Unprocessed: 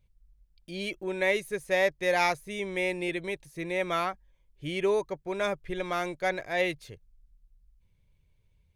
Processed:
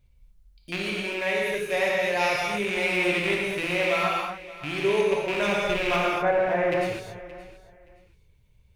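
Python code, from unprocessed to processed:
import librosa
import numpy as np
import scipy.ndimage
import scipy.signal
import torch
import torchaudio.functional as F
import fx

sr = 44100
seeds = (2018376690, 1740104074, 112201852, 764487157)

y = fx.rattle_buzz(x, sr, strikes_db=-41.0, level_db=-22.0)
y = fx.lowpass(y, sr, hz=1600.0, slope=24, at=(5.96, 6.72))
y = fx.rider(y, sr, range_db=10, speed_s=0.5)
y = fx.comb_fb(y, sr, f0_hz=84.0, decay_s=0.16, harmonics='all', damping=0.0, mix_pct=50, at=(0.76, 1.47))
y = fx.echo_feedback(y, sr, ms=573, feedback_pct=22, wet_db=-17.5)
y = fx.rev_gated(y, sr, seeds[0], gate_ms=280, shape='flat', drr_db=-3.5)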